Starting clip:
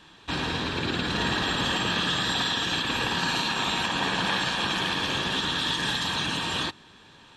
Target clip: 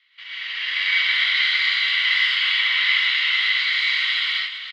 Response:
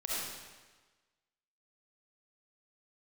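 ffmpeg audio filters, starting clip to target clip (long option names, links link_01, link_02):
-filter_complex "[0:a]aecho=1:1:477|954:0.316|0.0506,asetrate=52920,aresample=44100,dynaudnorm=framelen=250:gausssize=5:maxgain=11.5dB,atempo=1.3,asuperpass=centerf=2500:order=4:qfactor=1.9[link_01];[1:a]atrim=start_sample=2205,afade=type=out:start_time=0.15:duration=0.01,atrim=end_sample=7056,asetrate=23814,aresample=44100[link_02];[link_01][link_02]afir=irnorm=-1:irlink=0,volume=-3dB"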